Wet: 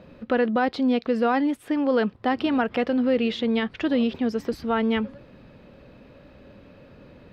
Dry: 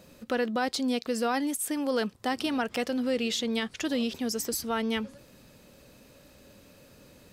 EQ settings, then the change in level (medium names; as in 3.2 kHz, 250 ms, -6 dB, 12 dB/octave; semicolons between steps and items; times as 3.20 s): distance through air 380 m; +7.5 dB